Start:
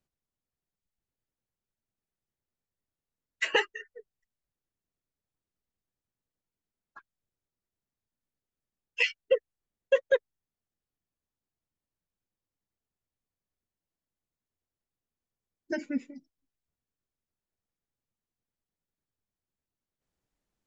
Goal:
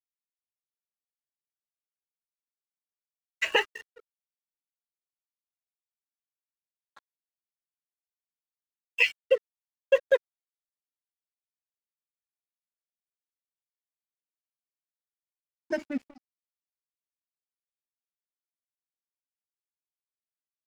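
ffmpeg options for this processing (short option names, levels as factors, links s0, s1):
-af "equalizer=f=630:t=o:w=0.33:g=6,equalizer=f=1000:t=o:w=0.33:g=4,equalizer=f=2500:t=o:w=0.33:g=6,aeval=exprs='sgn(val(0))*max(abs(val(0))-0.00562,0)':c=same"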